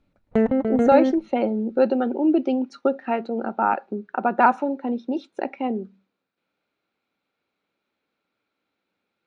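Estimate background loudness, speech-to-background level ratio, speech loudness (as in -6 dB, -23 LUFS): -22.0 LUFS, -1.0 dB, -23.0 LUFS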